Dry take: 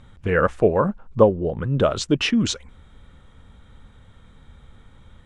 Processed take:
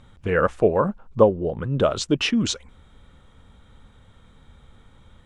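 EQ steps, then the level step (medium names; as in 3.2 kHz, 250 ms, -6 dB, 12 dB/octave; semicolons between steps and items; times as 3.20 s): bass shelf 230 Hz -3.5 dB; peaking EQ 1.8 kHz -2.5 dB; 0.0 dB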